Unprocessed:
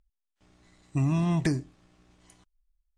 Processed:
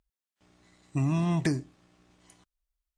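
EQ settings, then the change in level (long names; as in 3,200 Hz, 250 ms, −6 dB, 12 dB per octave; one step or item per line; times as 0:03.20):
high-pass filter 100 Hz 6 dB per octave
0.0 dB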